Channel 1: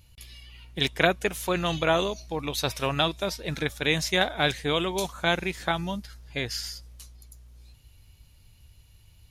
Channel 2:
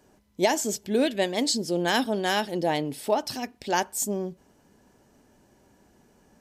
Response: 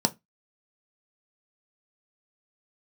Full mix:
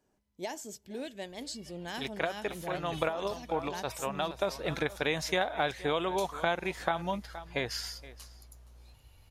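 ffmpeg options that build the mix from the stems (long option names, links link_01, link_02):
-filter_complex "[0:a]equalizer=frequency=790:width_type=o:width=2.4:gain=11,adelay=1200,volume=-5dB,asplit=2[link_01][link_02];[link_02]volume=-21dB[link_03];[1:a]asubboost=boost=8:cutoff=130,volume=-15dB,asplit=3[link_04][link_05][link_06];[link_05]volume=-21dB[link_07];[link_06]apad=whole_len=463385[link_08];[link_01][link_08]sidechaincompress=threshold=-50dB:ratio=8:attack=16:release=141[link_09];[link_03][link_07]amix=inputs=2:normalize=0,aecho=0:1:470:1[link_10];[link_09][link_04][link_10]amix=inputs=3:normalize=0,acompressor=threshold=-28dB:ratio=3"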